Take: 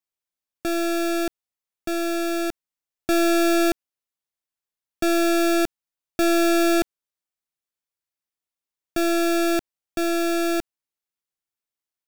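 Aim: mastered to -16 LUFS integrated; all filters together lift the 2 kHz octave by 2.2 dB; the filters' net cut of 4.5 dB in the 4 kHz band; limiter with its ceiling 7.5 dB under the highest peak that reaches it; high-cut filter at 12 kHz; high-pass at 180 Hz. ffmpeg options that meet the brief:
-af "highpass=180,lowpass=12000,equalizer=f=2000:t=o:g=4.5,equalizer=f=4000:t=o:g=-6.5,volume=3.98,alimiter=limit=0.473:level=0:latency=1"

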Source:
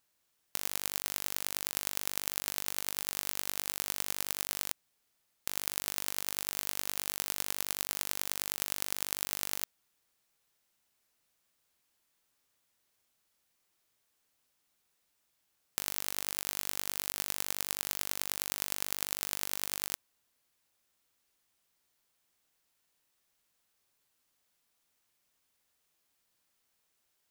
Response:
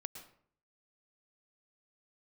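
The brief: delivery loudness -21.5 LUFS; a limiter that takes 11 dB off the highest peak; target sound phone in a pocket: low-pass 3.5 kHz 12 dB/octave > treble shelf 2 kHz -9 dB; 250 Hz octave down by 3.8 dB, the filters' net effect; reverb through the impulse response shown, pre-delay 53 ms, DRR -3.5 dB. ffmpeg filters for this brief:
-filter_complex "[0:a]equalizer=f=250:t=o:g=-5,alimiter=limit=0.188:level=0:latency=1,asplit=2[s0][s1];[1:a]atrim=start_sample=2205,adelay=53[s2];[s1][s2]afir=irnorm=-1:irlink=0,volume=2.11[s3];[s0][s3]amix=inputs=2:normalize=0,lowpass=3500,highshelf=f=2000:g=-9,volume=26.6"

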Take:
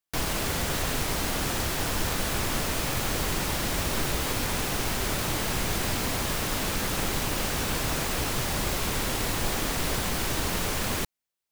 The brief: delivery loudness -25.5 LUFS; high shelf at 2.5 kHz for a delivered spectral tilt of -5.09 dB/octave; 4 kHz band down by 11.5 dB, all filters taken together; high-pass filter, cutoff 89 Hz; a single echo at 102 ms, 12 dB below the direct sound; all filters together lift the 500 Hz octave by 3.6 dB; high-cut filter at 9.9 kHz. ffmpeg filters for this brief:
-af "highpass=89,lowpass=9900,equalizer=f=500:t=o:g=5,highshelf=f=2500:g=-7,equalizer=f=4000:t=o:g=-9,aecho=1:1:102:0.251,volume=1.78"

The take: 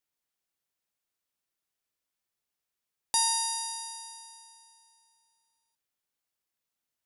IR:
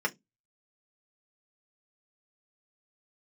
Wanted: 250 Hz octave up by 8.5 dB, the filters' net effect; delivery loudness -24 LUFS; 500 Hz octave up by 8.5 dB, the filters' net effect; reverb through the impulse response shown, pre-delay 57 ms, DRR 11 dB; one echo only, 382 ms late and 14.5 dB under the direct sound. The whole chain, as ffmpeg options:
-filter_complex "[0:a]equalizer=f=250:t=o:g=8,equalizer=f=500:t=o:g=9,aecho=1:1:382:0.188,asplit=2[s0][s1];[1:a]atrim=start_sample=2205,adelay=57[s2];[s1][s2]afir=irnorm=-1:irlink=0,volume=0.106[s3];[s0][s3]amix=inputs=2:normalize=0,volume=1.68"

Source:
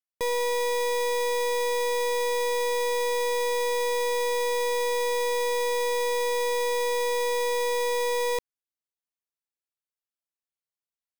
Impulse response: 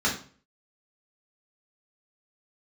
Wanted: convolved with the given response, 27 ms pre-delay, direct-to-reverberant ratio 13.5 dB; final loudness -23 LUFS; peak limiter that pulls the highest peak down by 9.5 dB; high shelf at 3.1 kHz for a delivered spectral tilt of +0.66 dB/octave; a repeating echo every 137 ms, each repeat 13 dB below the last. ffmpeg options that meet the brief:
-filter_complex "[0:a]highshelf=f=3100:g=7.5,alimiter=level_in=1.19:limit=0.0631:level=0:latency=1,volume=0.841,aecho=1:1:137|274|411:0.224|0.0493|0.0108,asplit=2[s0][s1];[1:a]atrim=start_sample=2205,adelay=27[s2];[s1][s2]afir=irnorm=-1:irlink=0,volume=0.0501[s3];[s0][s3]amix=inputs=2:normalize=0,volume=3.35"

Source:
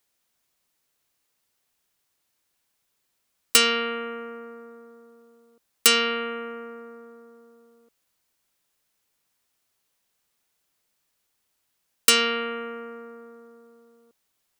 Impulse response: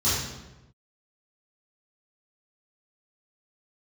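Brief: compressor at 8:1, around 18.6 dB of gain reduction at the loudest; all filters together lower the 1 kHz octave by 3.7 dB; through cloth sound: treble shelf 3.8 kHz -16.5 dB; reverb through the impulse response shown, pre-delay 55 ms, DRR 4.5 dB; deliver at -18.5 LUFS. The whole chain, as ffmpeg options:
-filter_complex "[0:a]equalizer=f=1000:t=o:g=-3,acompressor=threshold=0.0224:ratio=8,asplit=2[s0][s1];[1:a]atrim=start_sample=2205,adelay=55[s2];[s1][s2]afir=irnorm=-1:irlink=0,volume=0.133[s3];[s0][s3]amix=inputs=2:normalize=0,highshelf=f=3800:g=-16.5,volume=8.91"

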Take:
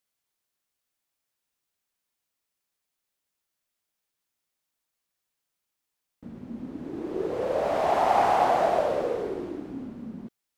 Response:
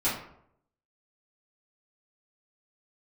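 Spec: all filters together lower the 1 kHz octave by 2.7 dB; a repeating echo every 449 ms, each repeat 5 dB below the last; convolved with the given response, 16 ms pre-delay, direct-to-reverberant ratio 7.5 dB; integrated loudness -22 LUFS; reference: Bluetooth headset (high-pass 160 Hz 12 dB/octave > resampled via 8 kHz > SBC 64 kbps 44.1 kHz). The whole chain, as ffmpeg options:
-filter_complex "[0:a]equalizer=f=1000:t=o:g=-4,aecho=1:1:449|898|1347|1796|2245|2694|3143:0.562|0.315|0.176|0.0988|0.0553|0.031|0.0173,asplit=2[s0][s1];[1:a]atrim=start_sample=2205,adelay=16[s2];[s1][s2]afir=irnorm=-1:irlink=0,volume=0.133[s3];[s0][s3]amix=inputs=2:normalize=0,highpass=160,aresample=8000,aresample=44100,volume=1.5" -ar 44100 -c:a sbc -b:a 64k

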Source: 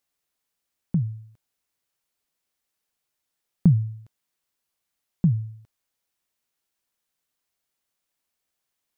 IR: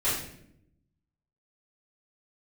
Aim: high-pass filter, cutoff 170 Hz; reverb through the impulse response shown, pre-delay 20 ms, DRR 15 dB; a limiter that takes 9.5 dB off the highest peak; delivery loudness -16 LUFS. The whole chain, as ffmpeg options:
-filter_complex "[0:a]highpass=170,alimiter=limit=0.1:level=0:latency=1,asplit=2[s0][s1];[1:a]atrim=start_sample=2205,adelay=20[s2];[s1][s2]afir=irnorm=-1:irlink=0,volume=0.0501[s3];[s0][s3]amix=inputs=2:normalize=0,volume=7.5"

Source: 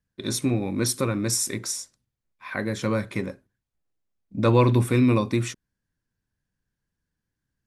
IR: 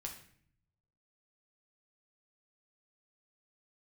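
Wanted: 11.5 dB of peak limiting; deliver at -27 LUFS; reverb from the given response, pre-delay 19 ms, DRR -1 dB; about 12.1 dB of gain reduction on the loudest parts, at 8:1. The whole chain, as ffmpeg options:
-filter_complex "[0:a]acompressor=threshold=0.0447:ratio=8,alimiter=level_in=1.26:limit=0.0631:level=0:latency=1,volume=0.794,asplit=2[s0][s1];[1:a]atrim=start_sample=2205,adelay=19[s2];[s1][s2]afir=irnorm=-1:irlink=0,volume=1.5[s3];[s0][s3]amix=inputs=2:normalize=0,volume=1.88"

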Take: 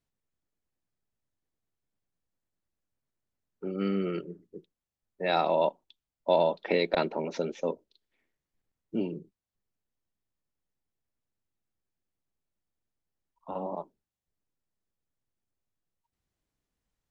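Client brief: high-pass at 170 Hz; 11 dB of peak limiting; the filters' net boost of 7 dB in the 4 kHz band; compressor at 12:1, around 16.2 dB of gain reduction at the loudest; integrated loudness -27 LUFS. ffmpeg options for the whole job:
-af "highpass=170,equalizer=f=4000:t=o:g=7.5,acompressor=threshold=0.0178:ratio=12,volume=7.08,alimiter=limit=0.188:level=0:latency=1"

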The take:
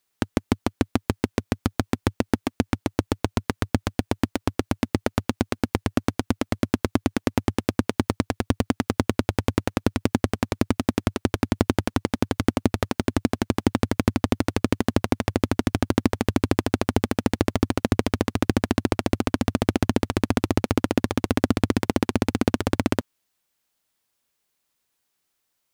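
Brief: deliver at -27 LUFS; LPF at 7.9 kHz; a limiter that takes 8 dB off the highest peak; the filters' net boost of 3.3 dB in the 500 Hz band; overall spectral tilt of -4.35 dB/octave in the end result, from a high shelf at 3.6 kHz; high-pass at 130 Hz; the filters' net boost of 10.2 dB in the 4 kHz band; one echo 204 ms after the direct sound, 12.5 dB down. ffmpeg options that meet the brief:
-af "highpass=130,lowpass=7900,equalizer=f=500:t=o:g=4,highshelf=f=3600:g=7,equalizer=f=4000:t=o:g=8.5,alimiter=limit=0.596:level=0:latency=1,aecho=1:1:204:0.237,volume=1.26"

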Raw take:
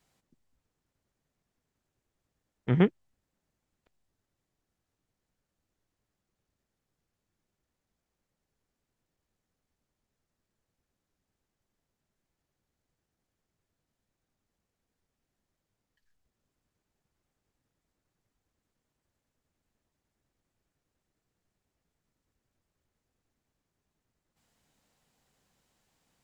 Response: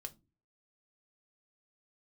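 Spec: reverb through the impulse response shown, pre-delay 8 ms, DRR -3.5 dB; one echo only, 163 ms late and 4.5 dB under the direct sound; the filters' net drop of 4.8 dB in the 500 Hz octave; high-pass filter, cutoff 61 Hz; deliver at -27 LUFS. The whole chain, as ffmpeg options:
-filter_complex "[0:a]highpass=61,equalizer=f=500:t=o:g=-7,aecho=1:1:163:0.596,asplit=2[s0][s1];[1:a]atrim=start_sample=2205,adelay=8[s2];[s1][s2]afir=irnorm=-1:irlink=0,volume=2.51[s3];[s0][s3]amix=inputs=2:normalize=0,volume=0.631"

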